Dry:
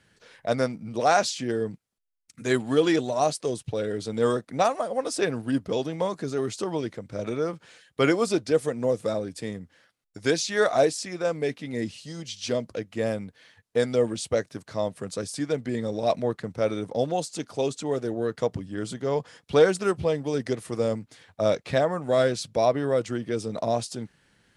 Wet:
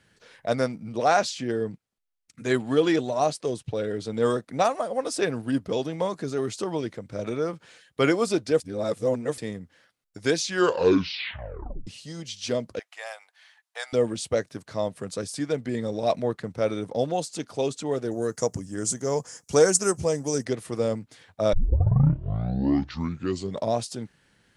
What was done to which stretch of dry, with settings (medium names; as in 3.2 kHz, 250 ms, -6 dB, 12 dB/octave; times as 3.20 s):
0.92–4.25 s: treble shelf 7.2 kHz -7 dB
8.60–9.38 s: reverse
10.41 s: tape stop 1.46 s
12.79–13.93 s: Chebyshev high-pass 730 Hz, order 4
18.11–20.45 s: resonant high shelf 4.8 kHz +11 dB, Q 3
21.53 s: tape start 2.20 s